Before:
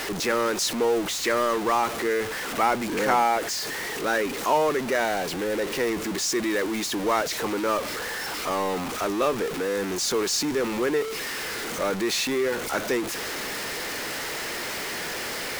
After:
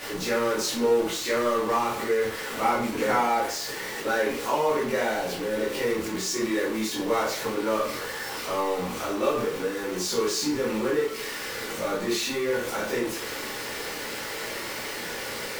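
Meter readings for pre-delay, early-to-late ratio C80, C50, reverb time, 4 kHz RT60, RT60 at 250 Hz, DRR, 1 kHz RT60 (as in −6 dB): 12 ms, 8.5 dB, 4.0 dB, 0.50 s, 0.40 s, 0.50 s, −8.0 dB, 0.55 s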